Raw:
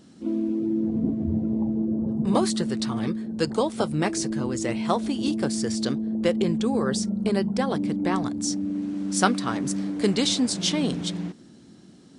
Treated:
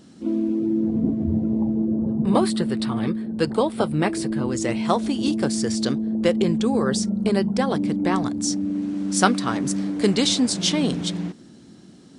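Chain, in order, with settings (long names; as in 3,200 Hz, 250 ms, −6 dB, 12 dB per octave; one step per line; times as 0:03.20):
0:02.03–0:04.48: parametric band 6,300 Hz −14 dB 0.53 octaves
level +3 dB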